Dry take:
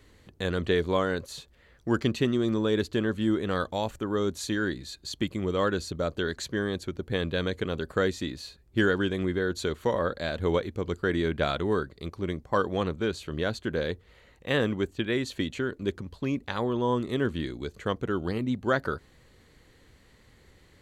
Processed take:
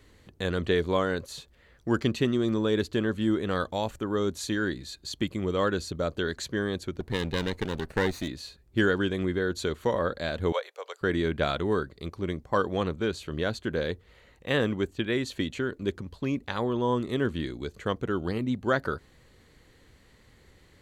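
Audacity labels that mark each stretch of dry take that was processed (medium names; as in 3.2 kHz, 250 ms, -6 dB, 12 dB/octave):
7.000000	8.280000	comb filter that takes the minimum delay 0.48 ms
10.520000	11.010000	steep high-pass 510 Hz 48 dB/octave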